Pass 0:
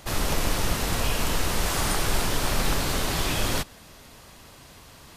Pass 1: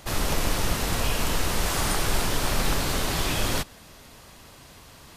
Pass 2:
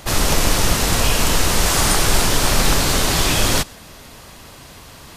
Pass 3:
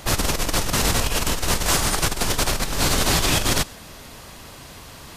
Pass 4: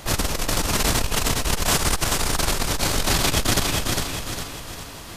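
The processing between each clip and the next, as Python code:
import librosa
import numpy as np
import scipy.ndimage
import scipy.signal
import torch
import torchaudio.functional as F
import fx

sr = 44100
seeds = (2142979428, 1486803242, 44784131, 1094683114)

y1 = x
y2 = fx.dynamic_eq(y1, sr, hz=6800.0, q=0.78, threshold_db=-41.0, ratio=4.0, max_db=4)
y2 = y2 * 10.0 ** (8.0 / 20.0)
y3 = fx.over_compress(y2, sr, threshold_db=-17.0, ratio=-0.5)
y3 = y3 * 10.0 ** (-3.0 / 20.0)
y4 = fx.echo_feedback(y3, sr, ms=405, feedback_pct=43, wet_db=-3.0)
y4 = fx.transformer_sat(y4, sr, knee_hz=110.0)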